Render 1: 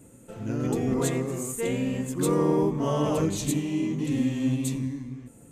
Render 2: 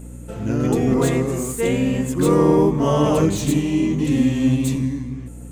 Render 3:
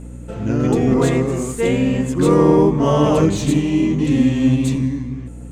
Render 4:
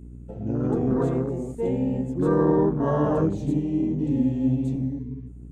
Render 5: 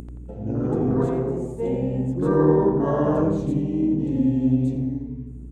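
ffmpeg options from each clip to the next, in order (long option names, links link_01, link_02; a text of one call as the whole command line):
ffmpeg -i in.wav -filter_complex "[0:a]acrossover=split=2900[link_01][link_02];[link_02]asoftclip=type=tanh:threshold=-35.5dB[link_03];[link_01][link_03]amix=inputs=2:normalize=0,aeval=exprs='val(0)+0.00708*(sin(2*PI*60*n/s)+sin(2*PI*2*60*n/s)/2+sin(2*PI*3*60*n/s)/3+sin(2*PI*4*60*n/s)/4+sin(2*PI*5*60*n/s)/5)':channel_layout=same,volume=8dB" out.wav
ffmpeg -i in.wav -af "adynamicsmooth=sensitivity=2.5:basefreq=7500,volume=2.5dB" out.wav
ffmpeg -i in.wav -af "afwtdn=0.0631,volume=-7.5dB" out.wav
ffmpeg -i in.wav -filter_complex "[0:a]acompressor=mode=upward:threshold=-33dB:ratio=2.5,asplit=2[link_01][link_02];[link_02]adelay=86,lowpass=frequency=1800:poles=1,volume=-4dB,asplit=2[link_03][link_04];[link_04]adelay=86,lowpass=frequency=1800:poles=1,volume=0.49,asplit=2[link_05][link_06];[link_06]adelay=86,lowpass=frequency=1800:poles=1,volume=0.49,asplit=2[link_07][link_08];[link_08]adelay=86,lowpass=frequency=1800:poles=1,volume=0.49,asplit=2[link_09][link_10];[link_10]adelay=86,lowpass=frequency=1800:poles=1,volume=0.49,asplit=2[link_11][link_12];[link_12]adelay=86,lowpass=frequency=1800:poles=1,volume=0.49[link_13];[link_01][link_03][link_05][link_07][link_09][link_11][link_13]amix=inputs=7:normalize=0" out.wav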